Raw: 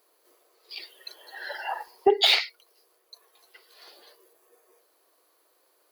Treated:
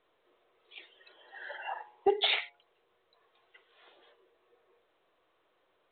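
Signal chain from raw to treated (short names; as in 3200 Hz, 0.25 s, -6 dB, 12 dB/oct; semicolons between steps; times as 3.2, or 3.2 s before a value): de-hum 140.4 Hz, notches 8; gain -6.5 dB; µ-law 64 kbps 8000 Hz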